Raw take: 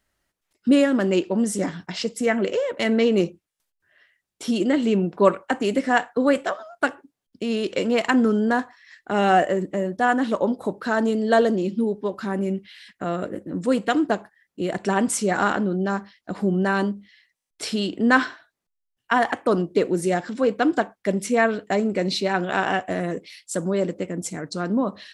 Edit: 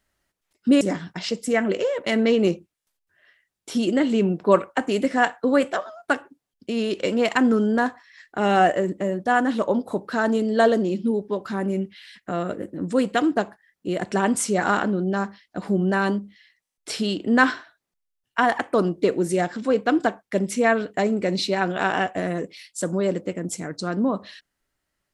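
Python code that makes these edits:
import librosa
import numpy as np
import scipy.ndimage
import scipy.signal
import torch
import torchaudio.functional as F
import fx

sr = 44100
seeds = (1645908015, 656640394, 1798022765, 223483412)

y = fx.edit(x, sr, fx.cut(start_s=0.81, length_s=0.73), tone=tone)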